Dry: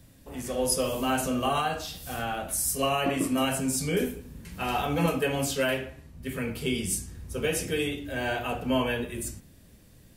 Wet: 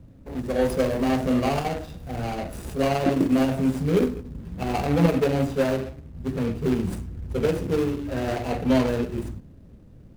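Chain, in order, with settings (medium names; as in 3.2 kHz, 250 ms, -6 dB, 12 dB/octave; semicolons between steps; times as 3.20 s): median filter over 41 samples; trim +7.5 dB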